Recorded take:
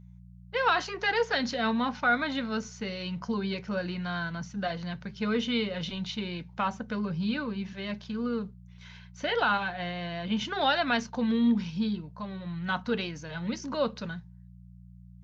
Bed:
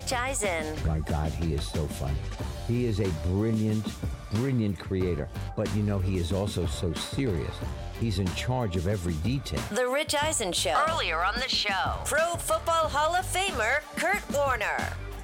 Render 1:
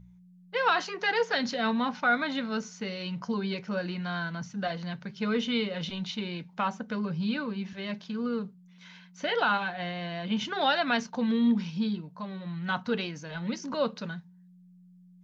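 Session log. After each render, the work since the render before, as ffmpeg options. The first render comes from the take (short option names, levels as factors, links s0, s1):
-af "bandreject=f=60:t=h:w=4,bandreject=f=120:t=h:w=4"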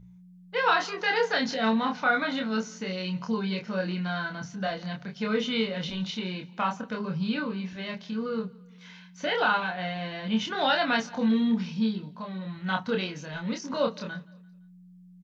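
-filter_complex "[0:a]asplit=2[s0][s1];[s1]adelay=27,volume=0.708[s2];[s0][s2]amix=inputs=2:normalize=0,aecho=1:1:171|342|513:0.0631|0.0284|0.0128"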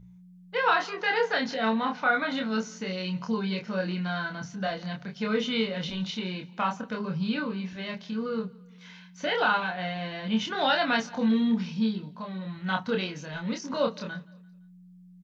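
-filter_complex "[0:a]asettb=1/sr,asplit=3[s0][s1][s2];[s0]atrim=end=0.574[s3];[s1]atrim=start=0.57:end=2.31,asetpts=PTS-STARTPTS,afade=t=in:d=0.004:c=qsin,afade=t=out:st=1.736:d=0.004:c=qsin,bass=f=250:g=-4,treble=f=4000:g=-6[s4];[s2]atrim=start=2.306[s5];[s3][s4]acrossfade=d=0.004:c1=hsin:c2=qsin[s6];[s6][s5]acrossfade=d=0.004:c1=qsin:c2=hsin"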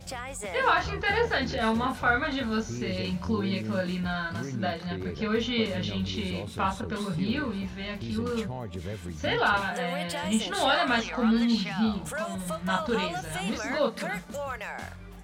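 -filter_complex "[1:a]volume=0.376[s0];[0:a][s0]amix=inputs=2:normalize=0"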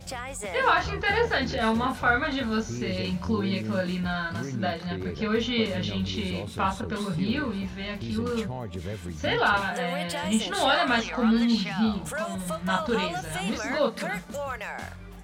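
-af "volume=1.19"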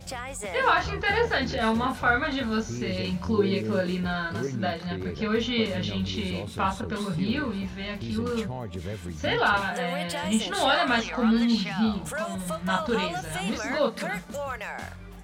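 -filter_complex "[0:a]asettb=1/sr,asplit=3[s0][s1][s2];[s0]atrim=end=3.384[s3];[s1]atrim=start=3.38:end=4.47,asetpts=PTS-STARTPTS,afade=t=in:d=0.004:c=qsin,afade=t=out:st=1.086:d=0.004:c=qsin,equalizer=f=410:t=o:w=0.3:g=12.5[s4];[s2]atrim=start=4.466[s5];[s3][s4]acrossfade=d=0.004:c1=hsin:c2=qsin[s6];[s6][s5]acrossfade=d=0.004:c1=qsin:c2=hsin"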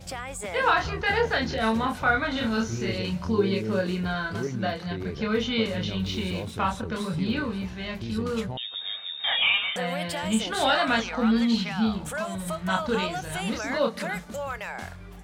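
-filter_complex "[0:a]asettb=1/sr,asplit=3[s0][s1][s2];[s0]atrim=end=2.324[s3];[s1]atrim=start=2.32:end=2.97,asetpts=PTS-STARTPTS,afade=t=in:d=0.004:c=qsin,afade=t=out:st=0.646:d=0.004:c=qsin,asplit=2[s4][s5];[s5]adelay=35,volume=0.794[s6];[s4][s6]amix=inputs=2:normalize=0,atrim=end_sample=28665[s7];[s2]atrim=start=2.966[s8];[s3][s7]acrossfade=d=0.004:c1=hsin:c2=qsin[s9];[s9][s8]acrossfade=d=0.004:c1=qsin:c2=hsin,asettb=1/sr,asplit=3[s10][s11][s12];[s10]atrim=end=6.044[s13];[s11]atrim=start=6.04:end=6.51,asetpts=PTS-STARTPTS,afade=t=in:d=0.004:c=qsin,afade=t=out:st=0.466:d=0.004:c=qsin,aeval=exprs='val(0)+0.5*0.00596*sgn(val(0))':c=same[s14];[s12]atrim=start=6.506[s15];[s13][s14]acrossfade=d=0.004:c1=hsin:c2=qsin[s16];[s16][s15]acrossfade=d=0.004:c1=qsin:c2=hsin,asettb=1/sr,asplit=3[s17][s18][s19];[s17]atrim=end=8.574[s20];[s18]atrim=start=8.57:end=9.76,asetpts=PTS-STARTPTS,afade=t=in:d=0.004:c=qsin,afade=t=out:st=1.186:d=0.004:c=qsin,lowpass=f=3200:t=q:w=0.5098,lowpass=f=3200:t=q:w=0.6013,lowpass=f=3200:t=q:w=0.9,lowpass=f=3200:t=q:w=2.563,afreqshift=-3800[s21];[s19]atrim=start=9.756[s22];[s20][s21]acrossfade=d=0.004:c1=hsin:c2=qsin[s23];[s23][s22]acrossfade=d=0.004:c1=qsin:c2=hsin"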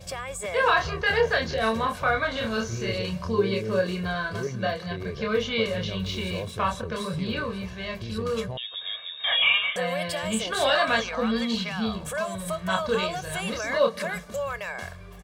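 -af "lowshelf=f=76:g=-7,aecho=1:1:1.8:0.58"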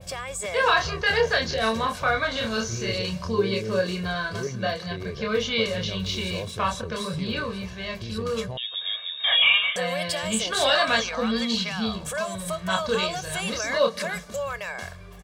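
-af "adynamicequalizer=threshold=0.00708:dfrequency=5600:dqfactor=0.78:tfrequency=5600:tqfactor=0.78:attack=5:release=100:ratio=0.375:range=3.5:mode=boostabove:tftype=bell"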